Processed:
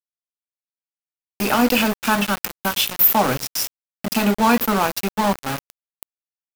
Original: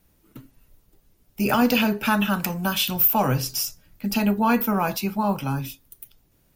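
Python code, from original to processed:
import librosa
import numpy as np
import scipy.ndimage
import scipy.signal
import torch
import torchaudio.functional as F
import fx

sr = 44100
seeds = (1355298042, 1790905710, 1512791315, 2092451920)

p1 = scipy.signal.sosfilt(scipy.signal.butter(2, 180.0, 'highpass', fs=sr, output='sos'), x)
p2 = fx.rider(p1, sr, range_db=3, speed_s=2.0)
p3 = p1 + (p2 * librosa.db_to_amplitude(0.0))
p4 = np.where(np.abs(p3) >= 10.0 ** (-17.5 / 20.0), p3, 0.0)
y = p4 * librosa.db_to_amplitude(-2.0)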